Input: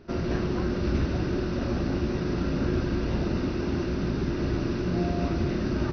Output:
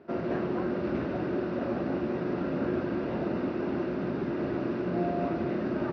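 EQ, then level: BPF 190–2300 Hz; bell 630 Hz +5 dB 0.86 oct; -1.5 dB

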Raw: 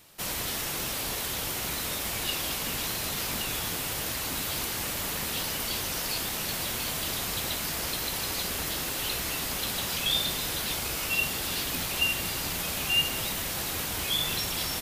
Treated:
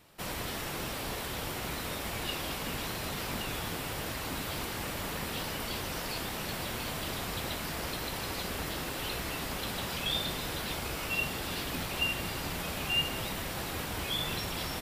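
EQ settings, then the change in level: high shelf 3200 Hz -10.5 dB; notch 6400 Hz, Q 23; 0.0 dB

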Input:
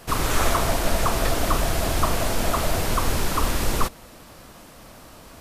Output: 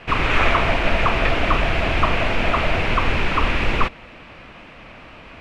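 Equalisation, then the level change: synth low-pass 2500 Hz, resonance Q 3.4; +2.5 dB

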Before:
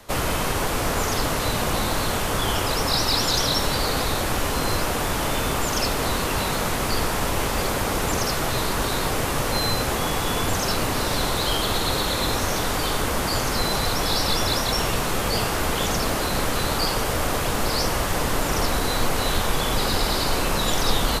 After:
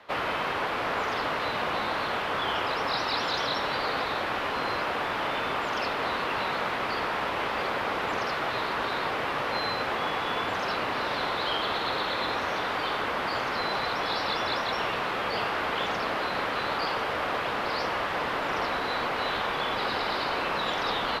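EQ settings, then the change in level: HPF 1100 Hz 6 dB/oct; air absorption 370 m; +3.5 dB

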